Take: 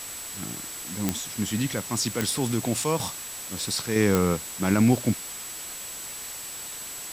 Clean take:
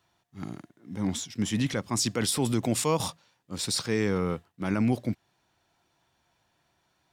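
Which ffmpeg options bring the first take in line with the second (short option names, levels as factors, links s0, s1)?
-af "adeclick=t=4,bandreject=f=7800:w=30,afwtdn=0.013,asetnsamples=n=441:p=0,asendcmd='3.96 volume volume -5.5dB',volume=1"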